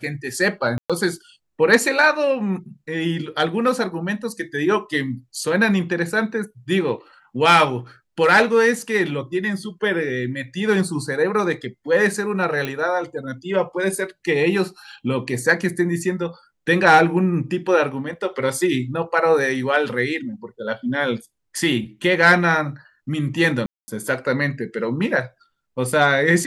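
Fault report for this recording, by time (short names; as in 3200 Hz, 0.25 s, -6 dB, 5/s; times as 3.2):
0.78–0.9 gap 0.116 s
12.65 pop -12 dBFS
23.66–23.88 gap 0.22 s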